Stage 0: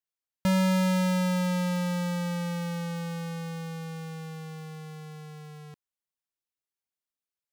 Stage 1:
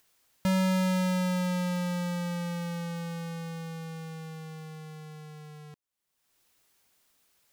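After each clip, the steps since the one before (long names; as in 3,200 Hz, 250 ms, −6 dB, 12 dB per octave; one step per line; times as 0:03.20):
upward compression, threshold −46 dBFS
level −2 dB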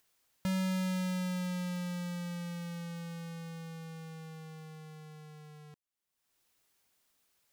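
dynamic equaliser 720 Hz, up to −6 dB, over −43 dBFS, Q 0.83
level −5.5 dB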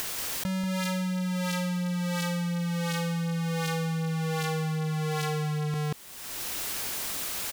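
single-tap delay 185 ms −4.5 dB
envelope flattener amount 100%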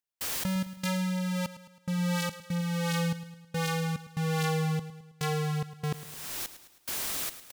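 gate pattern ".xx.xxx." 72 BPM −60 dB
repeating echo 107 ms, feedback 51%, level −14 dB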